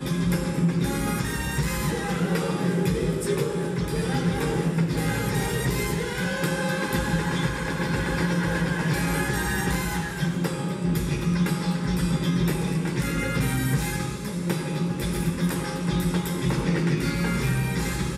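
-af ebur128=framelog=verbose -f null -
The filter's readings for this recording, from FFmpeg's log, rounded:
Integrated loudness:
  I:         -25.6 LUFS
  Threshold: -35.6 LUFS
Loudness range:
  LRA:         1.1 LU
  Threshold: -45.6 LUFS
  LRA low:   -26.3 LUFS
  LRA high:  -25.2 LUFS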